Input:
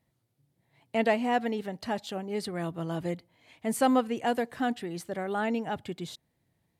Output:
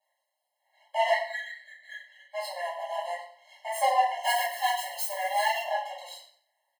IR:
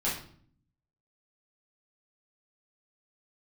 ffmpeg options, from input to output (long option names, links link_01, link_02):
-filter_complex "[0:a]asplit=3[link_01][link_02][link_03];[link_01]afade=type=out:start_time=1.1:duration=0.02[link_04];[link_02]asuperpass=centerf=1800:order=8:qfactor=2.3,afade=type=in:start_time=1.1:duration=0.02,afade=type=out:start_time=2.33:duration=0.02[link_05];[link_03]afade=type=in:start_time=2.33:duration=0.02[link_06];[link_04][link_05][link_06]amix=inputs=3:normalize=0,aeval=exprs='max(val(0),0)':channel_layout=same,asettb=1/sr,asplit=3[link_07][link_08][link_09];[link_07]atrim=end=4.234[link_10];[link_08]atrim=start=4.23:end=5.61,asetpts=PTS-STARTPTS,afade=type=in:duration=0.004:curve=qsin,afade=type=out:start_time=1.376:duration=0.004:curve=qsin,aemphasis=mode=production:type=riaa[link_11];[link_09]atrim=start=5.606[link_12];[link_10][link_11]acrossfade=duration=0.004:curve1=hsin:curve2=qsin[link_13];[link_13][link_12]acrossfade=duration=0.004:curve1=qsin:curve2=hsin,aecho=1:1:92|184|276:0.178|0.048|0.013[link_14];[1:a]atrim=start_sample=2205[link_15];[link_14][link_15]afir=irnorm=-1:irlink=0,afftfilt=real='re*eq(mod(floor(b*sr/1024/550),2),1)':imag='im*eq(mod(floor(b*sr/1024/550),2),1)':win_size=1024:overlap=0.75,volume=2dB"